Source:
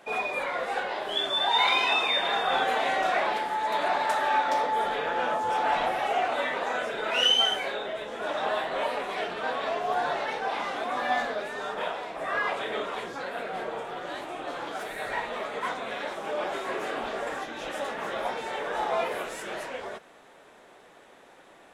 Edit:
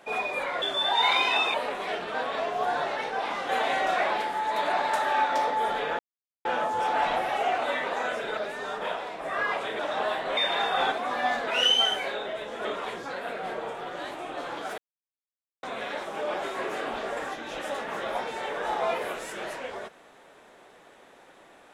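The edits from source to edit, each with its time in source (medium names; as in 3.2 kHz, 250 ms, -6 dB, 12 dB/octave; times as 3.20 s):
0.62–1.18 s: delete
2.10–2.65 s: swap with 8.83–10.78 s
5.15 s: insert silence 0.46 s
7.07–8.25 s: swap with 11.33–12.75 s
14.88–15.73 s: mute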